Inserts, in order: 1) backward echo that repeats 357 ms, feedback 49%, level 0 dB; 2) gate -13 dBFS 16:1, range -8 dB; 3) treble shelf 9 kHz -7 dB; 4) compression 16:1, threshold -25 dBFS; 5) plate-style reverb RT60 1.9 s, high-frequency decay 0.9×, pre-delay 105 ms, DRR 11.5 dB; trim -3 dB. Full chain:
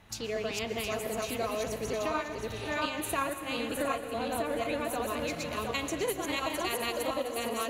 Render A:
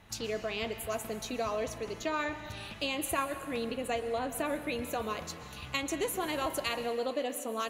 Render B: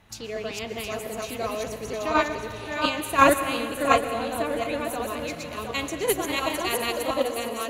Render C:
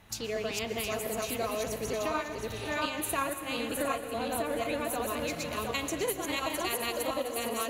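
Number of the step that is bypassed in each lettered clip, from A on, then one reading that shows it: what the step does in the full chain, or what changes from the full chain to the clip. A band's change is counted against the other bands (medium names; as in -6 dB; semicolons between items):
1, crest factor change +2.5 dB; 4, mean gain reduction 4.0 dB; 3, 8 kHz band +3.0 dB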